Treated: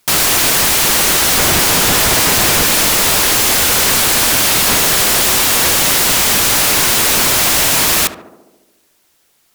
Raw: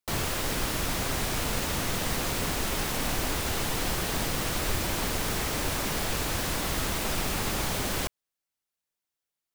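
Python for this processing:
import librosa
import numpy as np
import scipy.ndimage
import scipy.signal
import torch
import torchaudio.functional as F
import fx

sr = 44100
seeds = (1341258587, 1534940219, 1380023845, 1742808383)

p1 = fx.low_shelf(x, sr, hz=180.0, db=6.0, at=(1.38, 2.63))
p2 = fx.over_compress(p1, sr, threshold_db=-29.0, ratio=-1.0)
p3 = p1 + (p2 * librosa.db_to_amplitude(2.0))
p4 = fx.fold_sine(p3, sr, drive_db=19, ceiling_db=-8.5)
y = fx.echo_tape(p4, sr, ms=74, feedback_pct=79, wet_db=-7.5, lp_hz=1100.0, drive_db=8.0, wow_cents=31)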